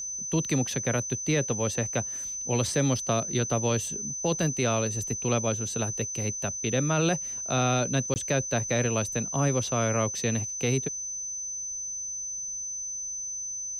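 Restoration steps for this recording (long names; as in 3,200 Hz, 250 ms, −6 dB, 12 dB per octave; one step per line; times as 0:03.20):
notch filter 6,100 Hz, Q 30
repair the gap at 0:08.14, 19 ms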